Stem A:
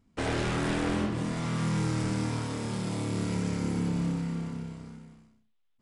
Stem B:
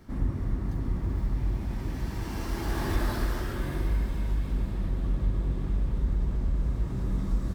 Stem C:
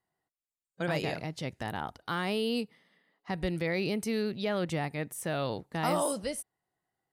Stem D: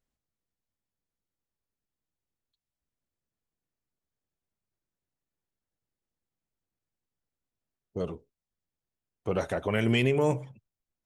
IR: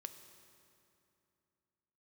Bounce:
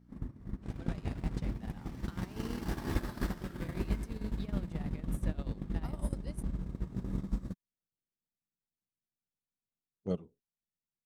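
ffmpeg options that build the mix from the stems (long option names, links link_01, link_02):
-filter_complex "[0:a]acompressor=threshold=-34dB:ratio=6,adelay=450,volume=-10.5dB[link_01];[1:a]aeval=exprs='val(0)+0.0112*(sin(2*PI*60*n/s)+sin(2*PI*2*60*n/s)/2+sin(2*PI*3*60*n/s)/3+sin(2*PI*4*60*n/s)/4+sin(2*PI*5*60*n/s)/5)':channel_layout=same,lowshelf=frequency=400:gain=-4.5,volume=2.5dB[link_02];[2:a]acompressor=threshold=-32dB:ratio=6,volume=-3dB[link_03];[3:a]adelay=2100,volume=1dB[link_04];[link_02][link_03][link_04]amix=inputs=3:normalize=0,equalizer=frequency=190:width_type=o:width=1.3:gain=9,acompressor=threshold=-30dB:ratio=4,volume=0dB[link_05];[link_01][link_05]amix=inputs=2:normalize=0,agate=range=-23dB:threshold=-29dB:ratio=16:detection=peak,dynaudnorm=framelen=120:gausssize=11:maxgain=8.5dB"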